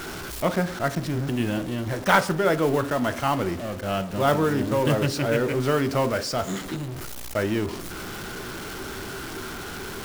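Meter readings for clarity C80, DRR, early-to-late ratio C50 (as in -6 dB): 20.0 dB, 11.0 dB, 17.0 dB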